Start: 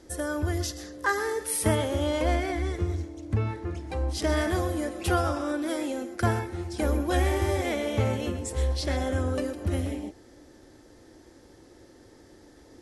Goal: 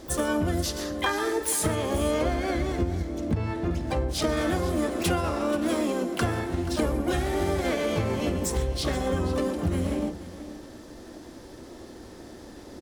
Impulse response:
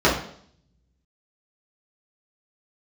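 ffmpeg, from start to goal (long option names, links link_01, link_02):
-filter_complex "[0:a]asplit=4[link_01][link_02][link_03][link_04];[link_02]asetrate=33038,aresample=44100,atempo=1.33484,volume=-5dB[link_05];[link_03]asetrate=66075,aresample=44100,atempo=0.66742,volume=-18dB[link_06];[link_04]asetrate=88200,aresample=44100,atempo=0.5,volume=-10dB[link_07];[link_01][link_05][link_06][link_07]amix=inputs=4:normalize=0,acompressor=threshold=-30dB:ratio=6,aecho=1:1:481:0.168,asplit=2[link_08][link_09];[1:a]atrim=start_sample=2205[link_10];[link_09][link_10]afir=irnorm=-1:irlink=0,volume=-36.5dB[link_11];[link_08][link_11]amix=inputs=2:normalize=0,volume=6.5dB"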